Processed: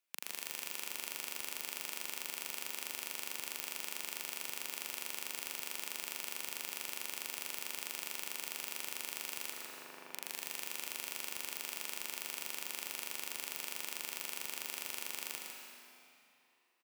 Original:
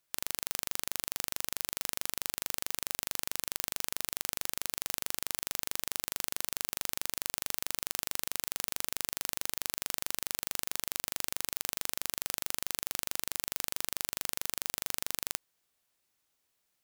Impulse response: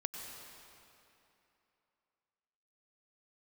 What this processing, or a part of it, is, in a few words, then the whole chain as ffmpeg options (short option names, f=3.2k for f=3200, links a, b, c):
PA in a hall: -filter_complex "[0:a]asettb=1/sr,asplit=3[a][b][c];[a]atrim=end=9.534[d];[b]atrim=start=9.53:end=10.12,asetpts=PTS-STARTPTS,afade=t=in:d=0.004:c=qsin,afade=t=out:st=0.586:d=0.004:c=qsin,lowpass=1.4k[e];[c]atrim=start=10.116[f];[d][e]acrossfade=d=0.004:c1=hsin:c2=qsin[g];[g][f]acrossfade=d=0.004:c1=qsin:c2=hsin,highpass=f=190:w=0.5412,highpass=f=190:w=1.3066,equalizer=f=2.5k:t=o:w=0.54:g=7.5,aecho=1:1:151:0.501[h];[1:a]atrim=start_sample=2205[i];[h][i]afir=irnorm=-1:irlink=0,volume=-7dB"